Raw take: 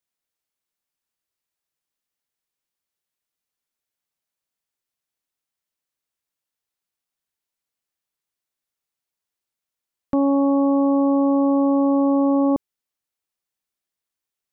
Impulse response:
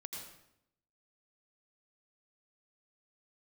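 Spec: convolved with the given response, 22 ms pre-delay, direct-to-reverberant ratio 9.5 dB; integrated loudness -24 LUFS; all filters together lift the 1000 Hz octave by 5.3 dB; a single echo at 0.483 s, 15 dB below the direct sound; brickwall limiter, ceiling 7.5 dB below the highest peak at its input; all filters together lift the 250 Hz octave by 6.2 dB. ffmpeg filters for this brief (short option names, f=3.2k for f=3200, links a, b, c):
-filter_complex "[0:a]equalizer=f=250:t=o:g=6.5,equalizer=f=1k:t=o:g=6,alimiter=limit=-15dB:level=0:latency=1,aecho=1:1:483:0.178,asplit=2[a][b];[1:a]atrim=start_sample=2205,adelay=22[c];[b][c]afir=irnorm=-1:irlink=0,volume=-7dB[d];[a][d]amix=inputs=2:normalize=0,volume=-5.5dB"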